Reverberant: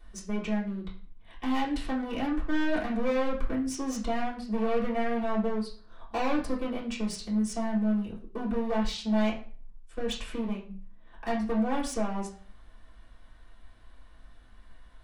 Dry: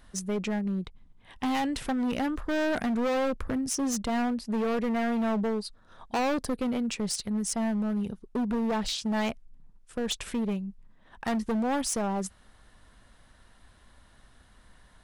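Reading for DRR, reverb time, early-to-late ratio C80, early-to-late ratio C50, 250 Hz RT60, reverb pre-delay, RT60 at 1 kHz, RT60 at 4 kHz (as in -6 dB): -7.5 dB, 0.40 s, 13.0 dB, 8.0 dB, 0.50 s, 3 ms, 0.40 s, 0.35 s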